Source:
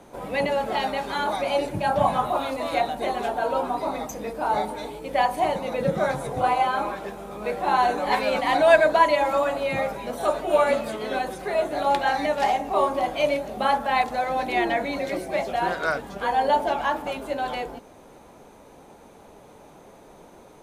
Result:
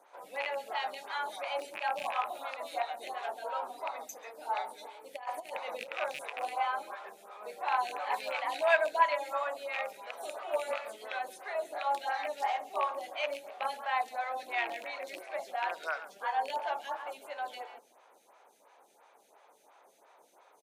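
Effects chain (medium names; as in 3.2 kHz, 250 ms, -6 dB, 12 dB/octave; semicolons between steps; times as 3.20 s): rattle on loud lows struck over -32 dBFS, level -16 dBFS; 5.16–5.96 s: compressor with a negative ratio -26 dBFS, ratio -0.5; high-pass 790 Hz 12 dB/octave; on a send: delay 136 ms -15 dB; on the sum: lamp-driven phase shifter 2.9 Hz; trim -5.5 dB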